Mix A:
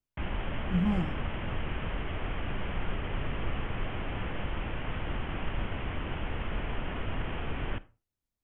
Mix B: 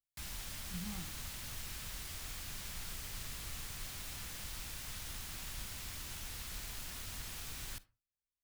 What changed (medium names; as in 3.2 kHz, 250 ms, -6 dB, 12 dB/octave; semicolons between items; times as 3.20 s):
background: remove steep low-pass 3.2 kHz 96 dB/octave; master: add amplifier tone stack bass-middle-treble 5-5-5